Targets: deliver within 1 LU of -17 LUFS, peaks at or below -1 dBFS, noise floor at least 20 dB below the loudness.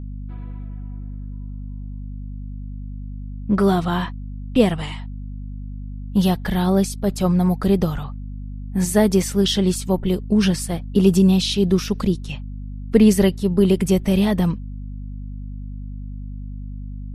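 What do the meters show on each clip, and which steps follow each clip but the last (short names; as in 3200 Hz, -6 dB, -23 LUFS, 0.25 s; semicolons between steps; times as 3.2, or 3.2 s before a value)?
hum 50 Hz; harmonics up to 250 Hz; hum level -29 dBFS; loudness -19.5 LUFS; peak -2.5 dBFS; loudness target -17.0 LUFS
-> notches 50/100/150/200/250 Hz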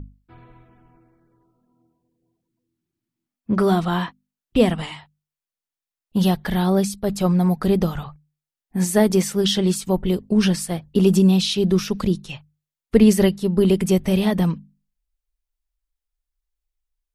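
hum none; loudness -20.0 LUFS; peak -3.0 dBFS; loudness target -17.0 LUFS
-> gain +3 dB; limiter -1 dBFS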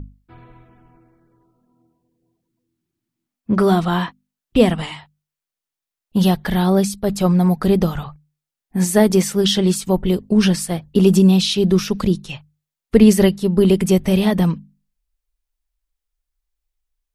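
loudness -17.0 LUFS; peak -1.0 dBFS; noise floor -87 dBFS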